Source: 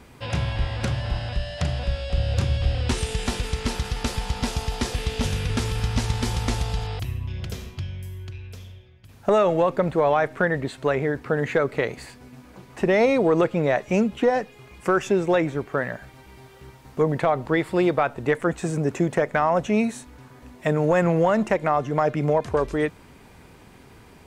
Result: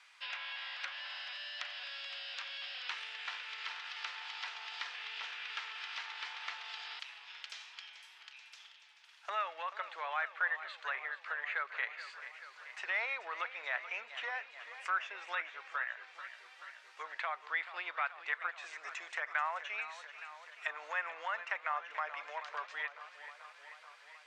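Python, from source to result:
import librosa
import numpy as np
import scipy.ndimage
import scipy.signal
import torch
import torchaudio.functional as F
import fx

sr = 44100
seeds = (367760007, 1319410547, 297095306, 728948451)

y = scipy.signal.sosfilt(scipy.signal.bessel(4, 1800.0, 'highpass', norm='mag', fs=sr, output='sos'), x)
y = fx.env_lowpass_down(y, sr, base_hz=2400.0, full_db=-33.0)
y = scipy.signal.sosfilt(scipy.signal.butter(2, 5100.0, 'lowpass', fs=sr, output='sos'), y)
y = fx.echo_warbled(y, sr, ms=433, feedback_pct=70, rate_hz=2.8, cents=76, wet_db=-13)
y = F.gain(torch.from_numpy(y), -2.0).numpy()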